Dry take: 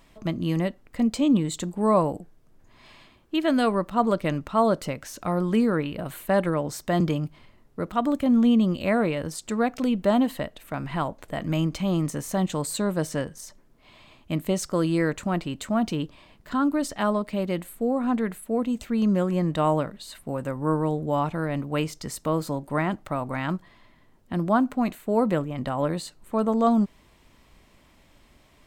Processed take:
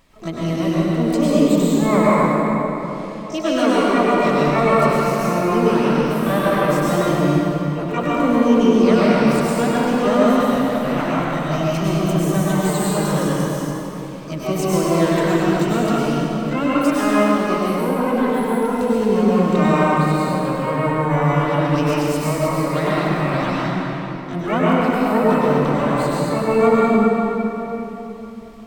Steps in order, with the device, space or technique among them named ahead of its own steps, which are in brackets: shimmer-style reverb (harmony voices +12 st -6 dB; reverberation RT60 3.5 s, pre-delay 93 ms, DRR -7.5 dB); trim -1.5 dB

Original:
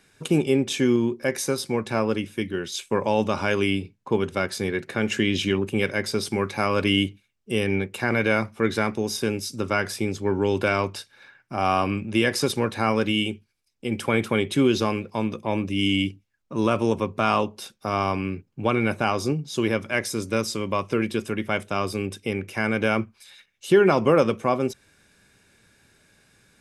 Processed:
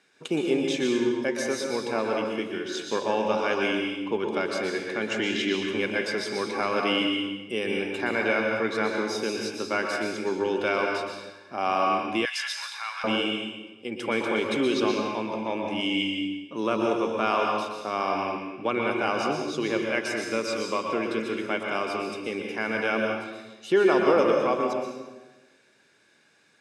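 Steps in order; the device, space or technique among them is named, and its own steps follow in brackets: supermarket ceiling speaker (band-pass 280–6400 Hz; reverberation RT60 1.1 s, pre-delay 114 ms, DRR 0.5 dB); 12.25–13.04 s: Bessel high-pass 1.6 kHz, order 8; trim -3.5 dB

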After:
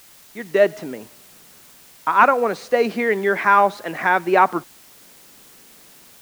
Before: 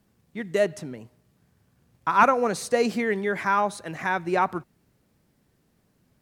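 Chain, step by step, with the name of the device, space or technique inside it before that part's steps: dictaphone (band-pass 270–3400 Hz; level rider gain up to 15 dB; wow and flutter; white noise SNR 27 dB); trim -1 dB

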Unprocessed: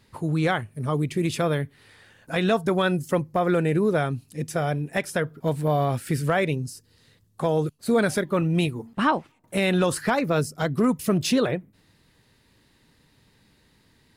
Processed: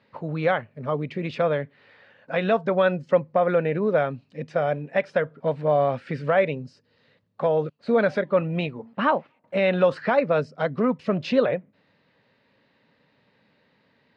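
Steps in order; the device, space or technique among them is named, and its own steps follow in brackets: kitchen radio (cabinet simulation 190–3700 Hz, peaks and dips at 340 Hz -8 dB, 560 Hz +8 dB, 3.4 kHz -5 dB)

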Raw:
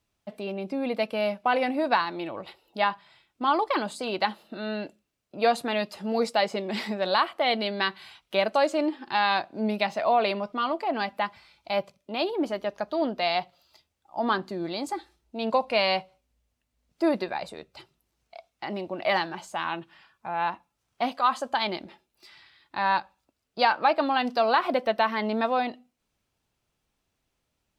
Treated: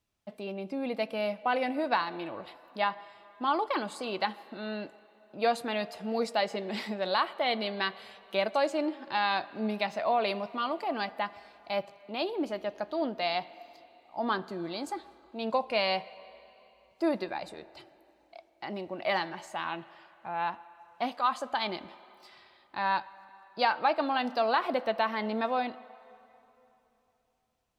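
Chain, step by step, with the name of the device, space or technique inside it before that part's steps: filtered reverb send (on a send: high-pass 340 Hz 12 dB/octave + low-pass 3.7 kHz + reverberation RT60 3.1 s, pre-delay 11 ms, DRR 16.5 dB); 10.27–11.05 s: on the sum: treble shelf 6.1 kHz +7 dB; trim -4.5 dB

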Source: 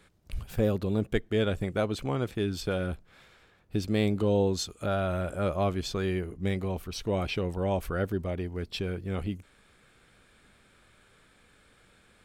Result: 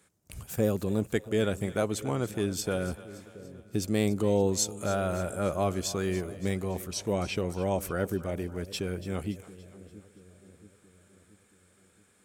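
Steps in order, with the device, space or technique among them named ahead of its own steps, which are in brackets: 6.91–7.46 s: low-pass 9.6 kHz 12 dB/octave; gate -55 dBFS, range -6 dB; budget condenser microphone (high-pass 92 Hz; resonant high shelf 5.3 kHz +8.5 dB, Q 1.5); two-band feedback delay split 530 Hz, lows 678 ms, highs 286 ms, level -16 dB

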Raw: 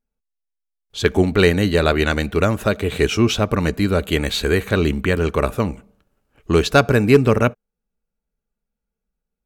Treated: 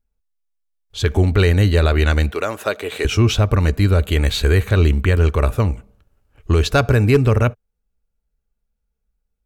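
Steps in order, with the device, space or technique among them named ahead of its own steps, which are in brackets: car stereo with a boomy subwoofer (resonant low shelf 130 Hz +8.5 dB, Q 1.5; peak limiter -4 dBFS, peak gain reduction 5 dB); 2.32–3.05 s: high-pass 390 Hz 12 dB/octave

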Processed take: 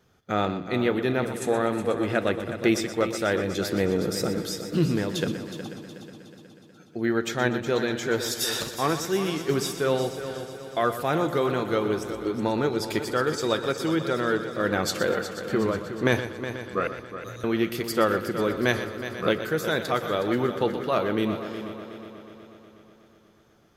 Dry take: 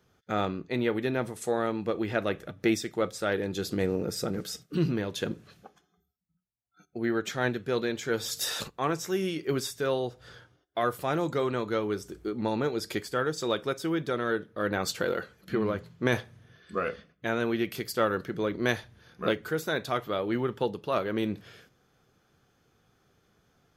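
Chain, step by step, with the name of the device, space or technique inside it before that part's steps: 16.87–17.44 s: inverse Chebyshev band-stop 310–1700 Hz, stop band 60 dB; multi-head tape echo (multi-head delay 122 ms, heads first and third, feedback 65%, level -12 dB; wow and flutter 23 cents); trim +3.5 dB

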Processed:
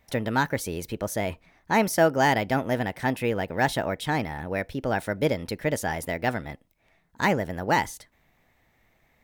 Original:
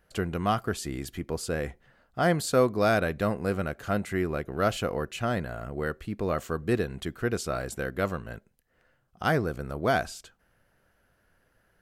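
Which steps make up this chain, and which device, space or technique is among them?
nightcore (tape speed +28%); trim +2.5 dB

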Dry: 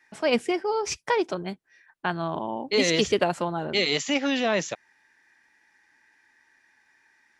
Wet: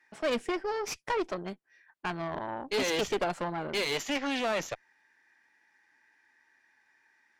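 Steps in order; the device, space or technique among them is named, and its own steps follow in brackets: tube preamp driven hard (valve stage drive 25 dB, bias 0.8; bass shelf 200 Hz -7.5 dB; treble shelf 3.8 kHz -6 dB); trim +2 dB

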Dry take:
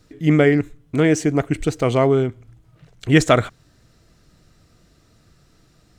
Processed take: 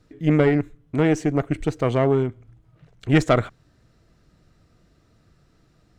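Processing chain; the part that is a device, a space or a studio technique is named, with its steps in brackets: tube preamp driven hard (valve stage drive 6 dB, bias 0.6; treble shelf 3.6 kHz -9 dB)

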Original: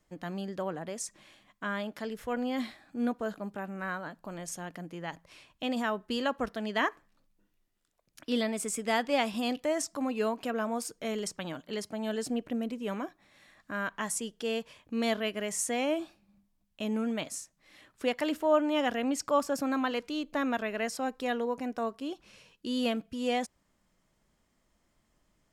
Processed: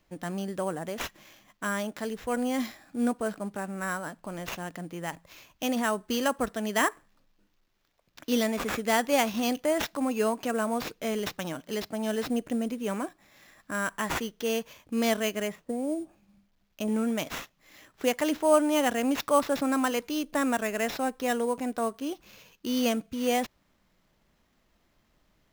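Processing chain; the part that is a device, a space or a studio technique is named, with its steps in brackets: 15.46–16.88 s: low-pass that closes with the level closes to 410 Hz, closed at -28.5 dBFS; early companding sampler (sample-rate reducer 9.2 kHz, jitter 0%; companded quantiser 8-bit); trim +3.5 dB

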